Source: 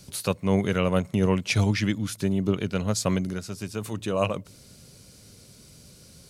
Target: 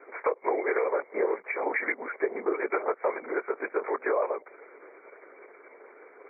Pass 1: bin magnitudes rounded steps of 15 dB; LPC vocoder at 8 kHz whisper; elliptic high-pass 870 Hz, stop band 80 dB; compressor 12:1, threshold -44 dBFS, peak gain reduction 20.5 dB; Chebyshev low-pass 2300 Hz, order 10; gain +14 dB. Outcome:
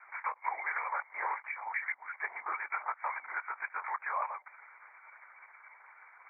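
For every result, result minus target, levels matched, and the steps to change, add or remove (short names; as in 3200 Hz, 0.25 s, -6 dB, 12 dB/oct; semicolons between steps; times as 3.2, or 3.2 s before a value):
500 Hz band -17.5 dB; compressor: peak gain reduction +5 dB
change: elliptic high-pass 420 Hz, stop band 80 dB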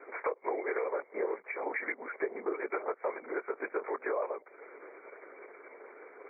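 compressor: peak gain reduction +6.5 dB
change: compressor 12:1, threshold -37 dBFS, peak gain reduction 15.5 dB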